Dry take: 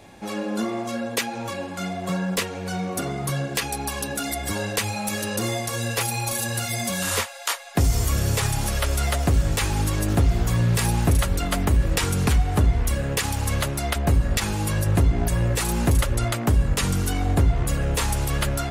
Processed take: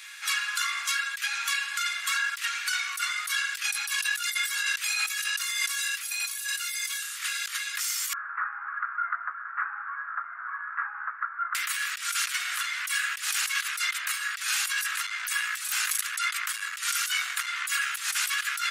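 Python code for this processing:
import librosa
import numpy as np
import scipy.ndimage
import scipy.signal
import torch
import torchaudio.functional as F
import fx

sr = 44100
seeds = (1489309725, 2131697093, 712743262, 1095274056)

y = fx.steep_lowpass(x, sr, hz=1500.0, slope=48, at=(8.13, 11.55))
y = fx.transformer_sat(y, sr, knee_hz=88.0, at=(15.06, 17.47))
y = scipy.signal.sosfilt(scipy.signal.butter(8, 1300.0, 'highpass', fs=sr, output='sos'), y)
y = fx.over_compress(y, sr, threshold_db=-37.0, ratio=-1.0)
y = y * 10.0 ** (7.0 / 20.0)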